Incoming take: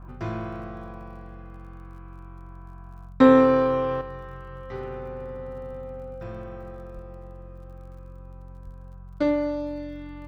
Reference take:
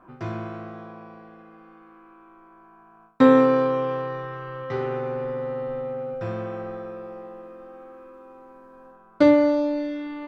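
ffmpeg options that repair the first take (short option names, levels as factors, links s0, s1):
-filter_complex "[0:a]adeclick=t=4,bandreject=f=45.2:t=h:w=4,bandreject=f=90.4:t=h:w=4,bandreject=f=135.6:t=h:w=4,bandreject=f=180.8:t=h:w=4,asplit=3[s0][s1][s2];[s0]afade=t=out:st=6.94:d=0.02[s3];[s1]highpass=f=140:w=0.5412,highpass=f=140:w=1.3066,afade=t=in:st=6.94:d=0.02,afade=t=out:st=7.06:d=0.02[s4];[s2]afade=t=in:st=7.06:d=0.02[s5];[s3][s4][s5]amix=inputs=3:normalize=0,asplit=3[s6][s7][s8];[s6]afade=t=out:st=8.64:d=0.02[s9];[s7]highpass=f=140:w=0.5412,highpass=f=140:w=1.3066,afade=t=in:st=8.64:d=0.02,afade=t=out:st=8.76:d=0.02[s10];[s8]afade=t=in:st=8.76:d=0.02[s11];[s9][s10][s11]amix=inputs=3:normalize=0,asetnsamples=n=441:p=0,asendcmd='4.01 volume volume 7.5dB',volume=1"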